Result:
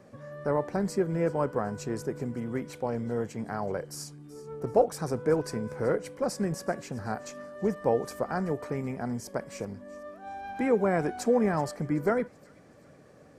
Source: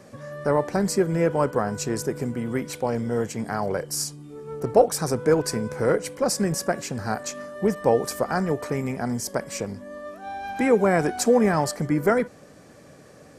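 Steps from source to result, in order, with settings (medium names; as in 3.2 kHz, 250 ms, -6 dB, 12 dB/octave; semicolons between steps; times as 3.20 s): peaking EQ 13 kHz -8.5 dB 2.8 oct; feedback echo behind a high-pass 379 ms, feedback 44%, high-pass 2.7 kHz, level -18 dB; trim -5.5 dB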